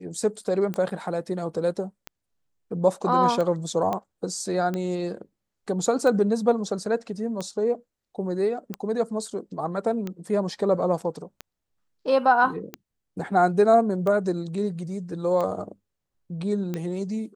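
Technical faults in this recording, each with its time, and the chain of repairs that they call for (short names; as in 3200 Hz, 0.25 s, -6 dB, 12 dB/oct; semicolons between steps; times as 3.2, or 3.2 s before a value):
tick 45 rpm -17 dBFS
3.93 pop -15 dBFS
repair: de-click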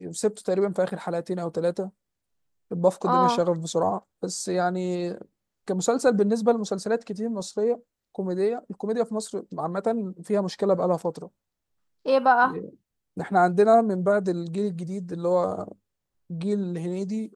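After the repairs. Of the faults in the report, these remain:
none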